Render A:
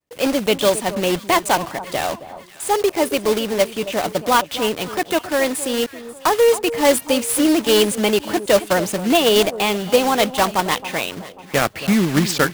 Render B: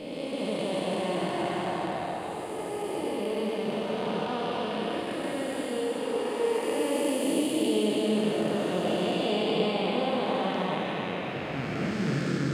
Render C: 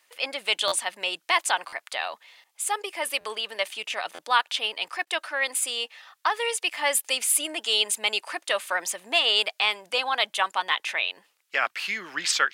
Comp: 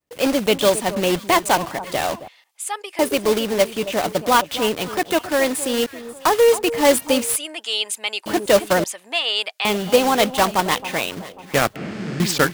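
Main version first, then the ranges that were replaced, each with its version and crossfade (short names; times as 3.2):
A
2.28–2.99 from C
7.36–8.26 from C
8.84–9.65 from C
11.76–12.2 from B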